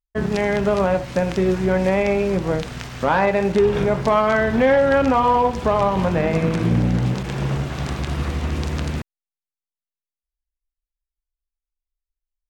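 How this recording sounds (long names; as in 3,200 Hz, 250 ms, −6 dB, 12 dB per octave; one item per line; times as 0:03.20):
background noise floor −92 dBFS
spectral slope −4.0 dB per octave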